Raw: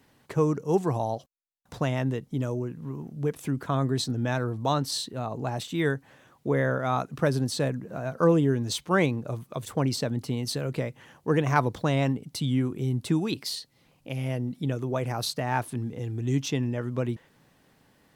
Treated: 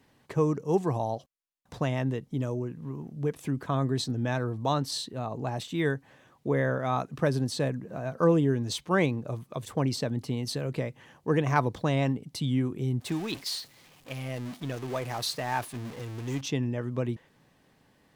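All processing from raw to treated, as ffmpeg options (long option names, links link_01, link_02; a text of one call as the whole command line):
ffmpeg -i in.wav -filter_complex "[0:a]asettb=1/sr,asplit=3[link_01][link_02][link_03];[link_01]atrim=end=13.004[link_04];[link_02]atrim=start=13:end=16.41,asetpts=PTS-STARTPTS,afade=type=in:duration=0.004:curve=qsin,afade=type=out:start_time=3.406:duration=0.004:curve=qsin,aeval=exprs='val(0)+0.5*0.0237*sgn(val(0))':channel_layout=same,agate=range=-33dB:threshold=-31dB:ratio=3:release=100:detection=peak,lowshelf=frequency=460:gain=-8[link_05];[link_03]atrim=start=16.406[link_06];[link_04][link_05]acrossfade=duration=0.004:curve1=hsin:curve2=qsin[link_07];[link_07][link_06]acrossfade=duration=0.004:curve1=qsin:curve2=hsin,highshelf=frequency=8700:gain=-5.5,bandreject=frequency=1400:width=16,volume=-1.5dB" out.wav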